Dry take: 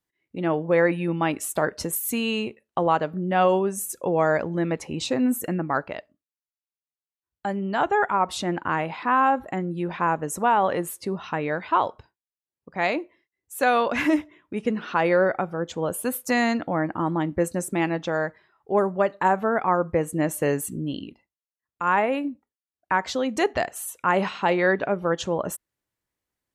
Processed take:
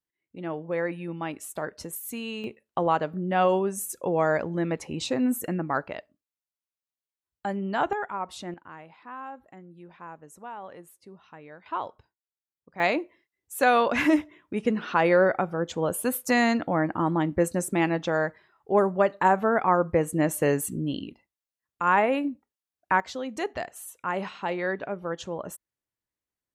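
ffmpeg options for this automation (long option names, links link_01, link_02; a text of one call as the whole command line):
ffmpeg -i in.wav -af "asetnsamples=nb_out_samples=441:pad=0,asendcmd='2.44 volume volume -2.5dB;7.93 volume volume -10dB;8.54 volume volume -19.5dB;11.66 volume volume -10dB;12.8 volume volume 0dB;23 volume volume -8dB',volume=-9dB" out.wav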